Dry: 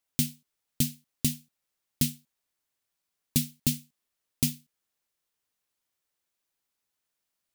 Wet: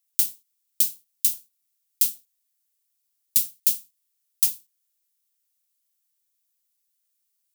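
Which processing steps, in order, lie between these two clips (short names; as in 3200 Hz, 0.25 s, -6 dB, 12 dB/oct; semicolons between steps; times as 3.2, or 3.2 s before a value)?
pre-emphasis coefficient 0.97; gain +5.5 dB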